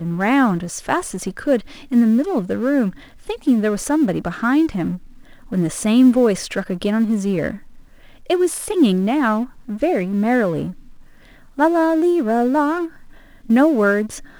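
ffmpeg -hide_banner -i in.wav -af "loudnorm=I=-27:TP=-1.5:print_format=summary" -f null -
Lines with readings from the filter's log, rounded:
Input Integrated:    -18.3 LUFS
Input True Peak:      -3.5 dBTP
Input LRA:             1.8 LU
Input Threshold:     -29.0 LUFS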